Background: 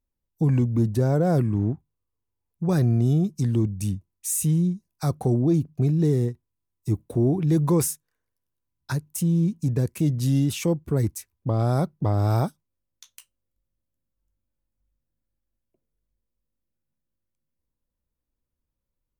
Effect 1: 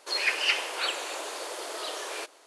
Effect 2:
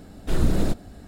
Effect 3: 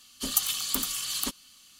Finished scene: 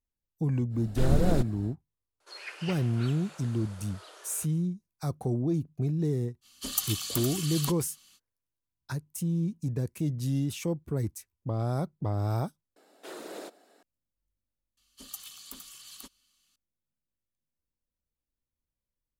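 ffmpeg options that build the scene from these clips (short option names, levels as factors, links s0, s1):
-filter_complex "[2:a]asplit=2[s0][s1];[3:a]asplit=2[s2][s3];[0:a]volume=0.422[s4];[1:a]equalizer=f=1400:t=o:w=0.36:g=7[s5];[s1]highpass=f=380:w=0.5412,highpass=f=380:w=1.3066[s6];[s4]asplit=2[s7][s8];[s7]atrim=end=12.764[s9];[s6]atrim=end=1.07,asetpts=PTS-STARTPTS,volume=0.355[s10];[s8]atrim=start=13.826[s11];[s0]atrim=end=1.07,asetpts=PTS-STARTPTS,volume=0.631,afade=t=in:d=0.1,afade=t=out:st=0.97:d=0.1,adelay=690[s12];[s5]atrim=end=2.46,asetpts=PTS-STARTPTS,volume=0.15,afade=t=in:d=0.004:c=hsin,afade=t=out:st=2.456:d=0.004:c=hsin,adelay=2200[s13];[s2]atrim=end=1.79,asetpts=PTS-STARTPTS,volume=0.631,afade=t=in:d=0.05,afade=t=out:st=1.74:d=0.05,adelay=6410[s14];[s3]atrim=end=1.79,asetpts=PTS-STARTPTS,volume=0.15,afade=t=in:d=0.004:c=hsin,afade=t=out:st=1.786:d=0.004:c=hsin,adelay=14770[s15];[s9][s10]acrossfade=d=0.004:c1=hsin:c2=hsin[s16];[s16][s11]acrossfade=d=0.004:c1=hsin:c2=hsin[s17];[s17][s12][s13][s14][s15]amix=inputs=5:normalize=0"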